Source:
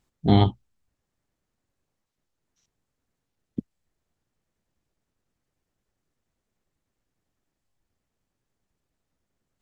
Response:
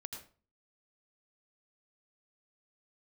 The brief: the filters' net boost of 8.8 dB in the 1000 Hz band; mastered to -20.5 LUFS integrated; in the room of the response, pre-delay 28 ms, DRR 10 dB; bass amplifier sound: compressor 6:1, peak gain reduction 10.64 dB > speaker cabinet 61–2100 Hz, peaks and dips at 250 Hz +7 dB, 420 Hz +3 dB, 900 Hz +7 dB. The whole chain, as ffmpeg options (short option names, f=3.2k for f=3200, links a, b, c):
-filter_complex "[0:a]equalizer=f=1k:t=o:g=6.5,asplit=2[a][b];[1:a]atrim=start_sample=2205,adelay=28[c];[b][c]afir=irnorm=-1:irlink=0,volume=-7dB[d];[a][d]amix=inputs=2:normalize=0,acompressor=threshold=-22dB:ratio=6,highpass=f=61:w=0.5412,highpass=f=61:w=1.3066,equalizer=f=250:t=q:w=4:g=7,equalizer=f=420:t=q:w=4:g=3,equalizer=f=900:t=q:w=4:g=7,lowpass=f=2.1k:w=0.5412,lowpass=f=2.1k:w=1.3066,volume=9dB"